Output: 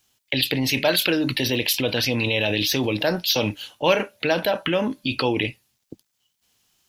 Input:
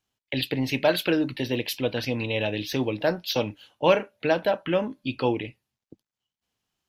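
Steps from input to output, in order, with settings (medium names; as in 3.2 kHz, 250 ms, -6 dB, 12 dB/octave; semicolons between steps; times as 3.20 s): treble shelf 3 kHz +11.5 dB; in parallel at 0 dB: compressor with a negative ratio -31 dBFS, ratio -1; on the sum: trim -1 dB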